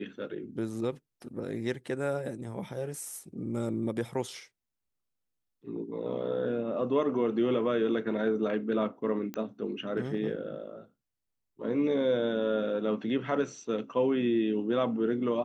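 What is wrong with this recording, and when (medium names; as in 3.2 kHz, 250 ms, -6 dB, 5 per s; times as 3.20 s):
9.34 s: pop -22 dBFS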